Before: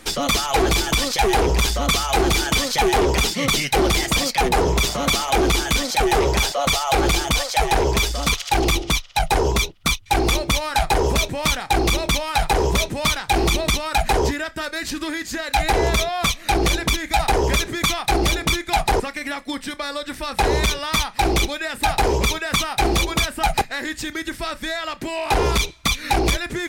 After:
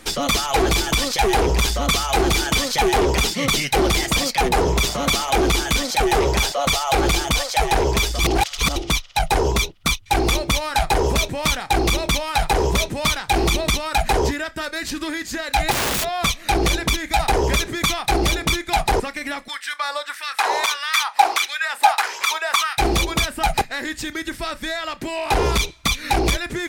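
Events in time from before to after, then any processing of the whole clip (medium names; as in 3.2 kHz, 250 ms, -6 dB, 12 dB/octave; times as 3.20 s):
8.19–8.76 s: reverse
15.71–16.11 s: integer overflow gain 17 dB
19.48–22.78 s: LFO high-pass sine 1.6 Hz 770–1700 Hz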